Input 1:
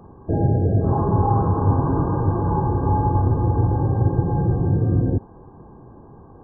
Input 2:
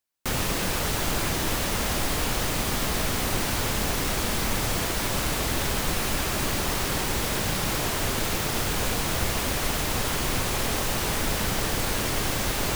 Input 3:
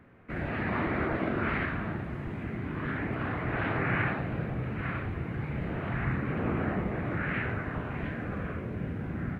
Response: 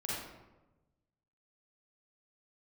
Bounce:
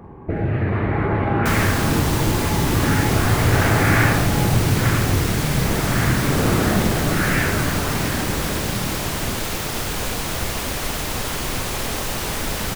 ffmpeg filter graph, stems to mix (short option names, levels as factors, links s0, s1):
-filter_complex "[0:a]acompressor=threshold=0.0631:ratio=6,volume=1.19,asplit=2[s0][s1];[s1]volume=0.447[s2];[1:a]adelay=1200,volume=1.19[s3];[2:a]dynaudnorm=f=240:g=11:m=2.99,volume=0.944,asplit=2[s4][s5];[s5]volume=0.316[s6];[3:a]atrim=start_sample=2205[s7];[s2][s6]amix=inputs=2:normalize=0[s8];[s8][s7]afir=irnorm=-1:irlink=0[s9];[s0][s3][s4][s9]amix=inputs=4:normalize=0"